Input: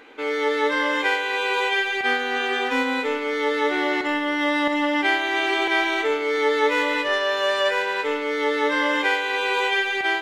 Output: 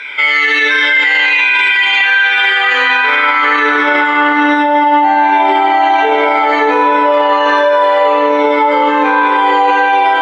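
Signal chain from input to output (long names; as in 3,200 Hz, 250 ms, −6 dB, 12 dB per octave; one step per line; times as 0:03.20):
rippled gain that drifts along the octave scale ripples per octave 1.6, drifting −1.3 Hz, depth 16 dB
high-shelf EQ 2,900 Hz +10.5 dB
band-pass filter sweep 2,200 Hz → 760 Hz, 0:01.63–0:05.14
on a send: echo machine with several playback heads 67 ms, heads first and third, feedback 47%, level −9.5 dB
on the sum: spring reverb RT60 3.3 s, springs 34/44 ms, chirp 25 ms, DRR −1.5 dB
boost into a limiter +22 dB
level −2 dB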